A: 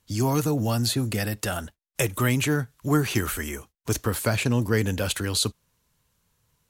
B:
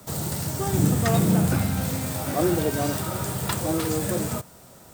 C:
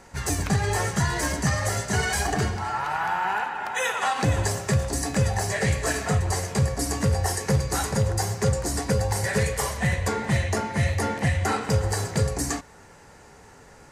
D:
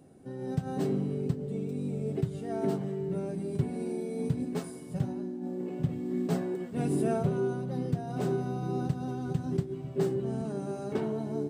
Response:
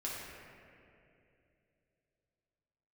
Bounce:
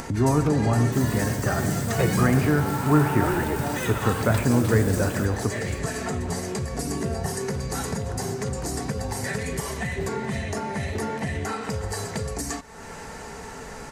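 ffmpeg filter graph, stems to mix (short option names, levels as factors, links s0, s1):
-filter_complex "[0:a]lowpass=f=1800:w=0.5412,lowpass=f=1800:w=1.3066,volume=1,asplit=2[s0][s1];[s1]volume=0.447[s2];[1:a]adelay=850,volume=0.501[s3];[2:a]aecho=1:1:4.5:0.37,alimiter=limit=0.141:level=0:latency=1:release=106,volume=0.562[s4];[3:a]volume=0.596[s5];[4:a]atrim=start_sample=2205[s6];[s2][s6]afir=irnorm=-1:irlink=0[s7];[s0][s3][s4][s5][s7]amix=inputs=5:normalize=0,acompressor=mode=upward:threshold=0.0708:ratio=2.5"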